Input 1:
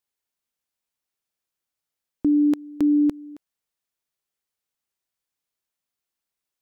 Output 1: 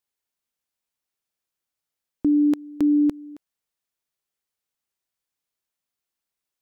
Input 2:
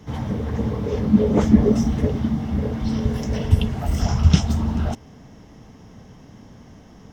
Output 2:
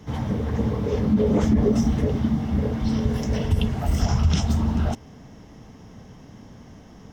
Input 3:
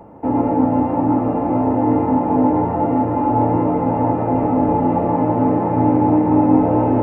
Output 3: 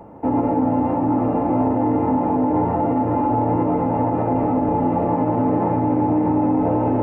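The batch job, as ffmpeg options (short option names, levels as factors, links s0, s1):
-af "alimiter=limit=0.282:level=0:latency=1:release=46"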